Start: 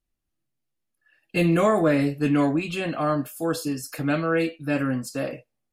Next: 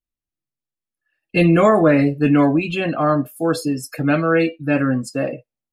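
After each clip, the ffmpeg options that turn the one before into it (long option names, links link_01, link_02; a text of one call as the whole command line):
ffmpeg -i in.wav -af "afftdn=noise_reduction=16:noise_floor=-37,volume=6.5dB" out.wav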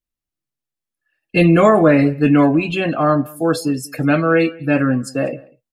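ffmpeg -i in.wav -filter_complex "[0:a]asplit=2[link_01][link_02];[link_02]adelay=192.4,volume=-24dB,highshelf=frequency=4000:gain=-4.33[link_03];[link_01][link_03]amix=inputs=2:normalize=0,volume=2dB" out.wav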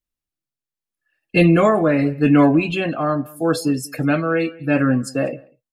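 ffmpeg -i in.wav -af "tremolo=f=0.8:d=0.46" out.wav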